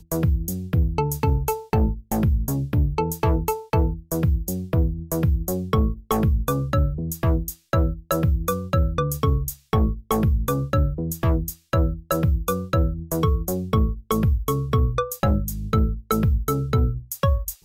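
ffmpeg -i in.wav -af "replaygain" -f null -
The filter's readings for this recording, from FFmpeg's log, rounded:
track_gain = +6.7 dB
track_peak = 0.243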